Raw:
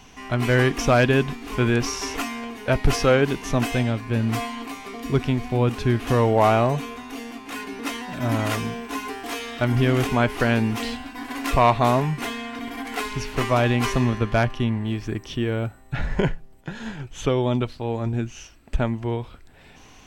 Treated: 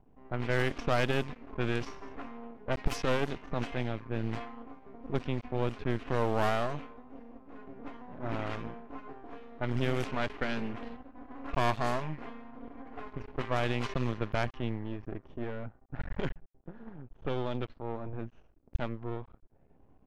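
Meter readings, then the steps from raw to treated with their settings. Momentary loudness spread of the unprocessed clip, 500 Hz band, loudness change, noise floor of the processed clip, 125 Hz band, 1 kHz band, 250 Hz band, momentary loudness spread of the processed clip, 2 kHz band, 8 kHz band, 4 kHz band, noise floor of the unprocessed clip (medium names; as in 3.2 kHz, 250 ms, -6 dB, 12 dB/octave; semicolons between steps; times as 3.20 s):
14 LU, -11.5 dB, -11.5 dB, -62 dBFS, -13.0 dB, -11.5 dB, -12.5 dB, 18 LU, -11.0 dB, -18.0 dB, -12.0 dB, -48 dBFS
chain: half-wave rectifier; level-controlled noise filter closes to 540 Hz, open at -15 dBFS; trim -8 dB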